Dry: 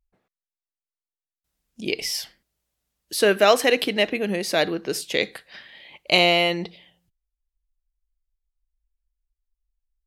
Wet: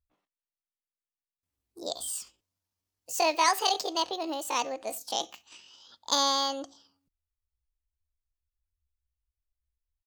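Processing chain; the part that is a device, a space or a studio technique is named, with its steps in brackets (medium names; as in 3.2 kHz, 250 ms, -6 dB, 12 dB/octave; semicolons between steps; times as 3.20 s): 2.08–3.74 s: peaking EQ 3.3 kHz +5 dB 0.9 oct; chipmunk voice (pitch shift +8 st); trim -8 dB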